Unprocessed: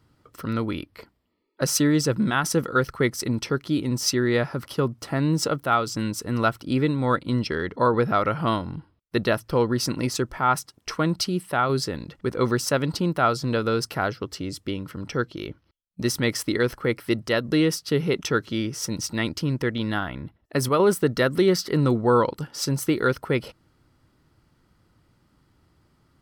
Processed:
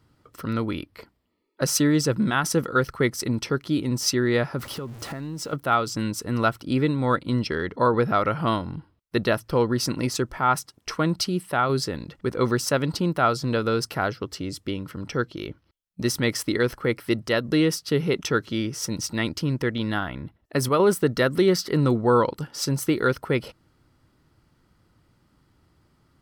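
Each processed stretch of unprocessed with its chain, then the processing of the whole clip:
4.59–5.53 s: jump at every zero crossing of -36 dBFS + compression 5:1, threshold -30 dBFS
whole clip: none

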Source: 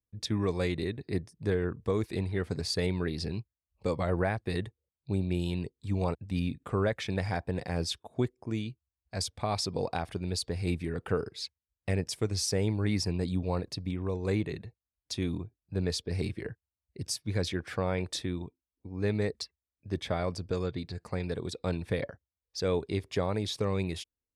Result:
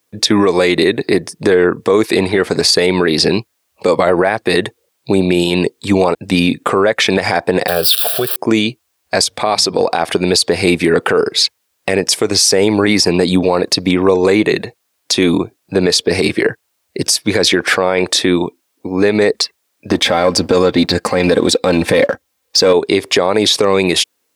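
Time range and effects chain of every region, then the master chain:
7.68–8.36 s: zero-crossing glitches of -28 dBFS + compression 2:1, threshold -35 dBFS + static phaser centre 1.4 kHz, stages 8
9.24–9.81 s: hum notches 50/100/150/200 Hz + compression 2:1, threshold -43 dBFS
19.90–22.73 s: bass shelf 170 Hz +9 dB + comb 3.8 ms, depth 47% + waveshaping leveller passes 1
whole clip: high-pass 330 Hz 12 dB/octave; compression 4:1, threshold -34 dBFS; loudness maximiser +30 dB; trim -1 dB

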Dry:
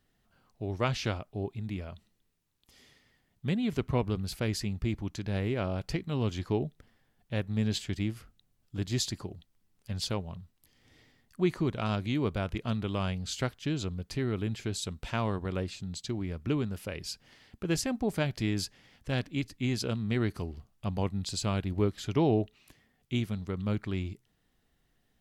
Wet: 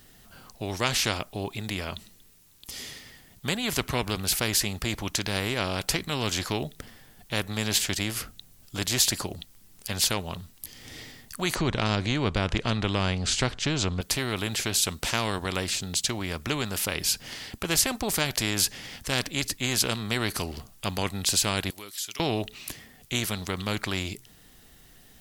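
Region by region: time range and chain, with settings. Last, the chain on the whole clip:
11.55–14.01 s: low-pass 8.5 kHz 24 dB/octave + tilt EQ -3.5 dB/octave + tape noise reduction on one side only encoder only
21.70–22.20 s: differentiator + compression 2:1, threshold -57 dBFS
whole clip: treble shelf 4.3 kHz +11 dB; spectrum-flattening compressor 2:1; trim +1 dB

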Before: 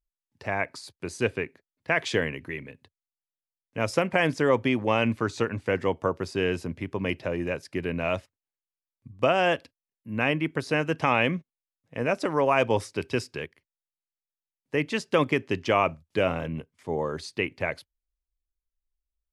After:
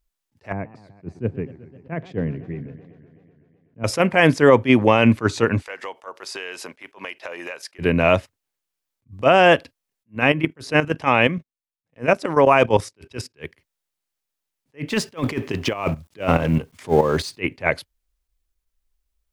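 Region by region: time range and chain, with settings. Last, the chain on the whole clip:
0.52–3.84 s: band-pass filter 150 Hz, Q 1.2 + modulated delay 126 ms, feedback 75%, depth 201 cents, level -18.5 dB
5.62–7.79 s: high-pass 780 Hz + compression 5:1, threshold -40 dBFS
10.15–13.34 s: gate -45 dBFS, range -11 dB + level held to a coarse grid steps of 12 dB
14.88–17.40 s: companding laws mixed up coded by mu + compressor with a negative ratio -26 dBFS, ratio -0.5 + tremolo saw up 4.7 Hz, depth 70%
whole clip: dynamic bell 6.1 kHz, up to -3 dB, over -42 dBFS, Q 0.72; loudness maximiser +12.5 dB; attacks held to a fixed rise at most 370 dB/s; trim -1 dB

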